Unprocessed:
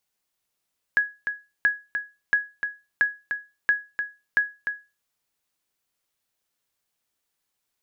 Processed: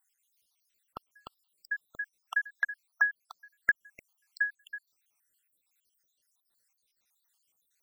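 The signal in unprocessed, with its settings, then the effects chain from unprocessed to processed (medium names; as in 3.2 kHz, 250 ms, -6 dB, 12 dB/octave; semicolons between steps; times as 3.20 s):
sonar ping 1.67 kHz, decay 0.27 s, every 0.68 s, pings 6, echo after 0.30 s, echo -7.5 dB -12 dBFS
random holes in the spectrogram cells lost 75%; treble shelf 2.2 kHz +10 dB; compression 2.5:1, threshold -24 dBFS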